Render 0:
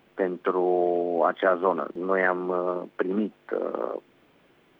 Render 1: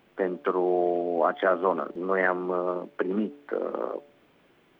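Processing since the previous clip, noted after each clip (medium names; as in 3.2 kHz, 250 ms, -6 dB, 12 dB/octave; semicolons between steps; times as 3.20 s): de-hum 144.2 Hz, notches 6; trim -1 dB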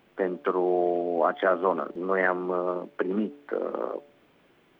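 no audible change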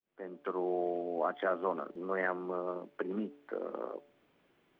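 fade-in on the opening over 0.61 s; trim -9 dB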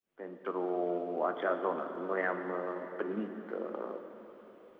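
plate-style reverb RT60 4 s, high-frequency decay 0.9×, DRR 6.5 dB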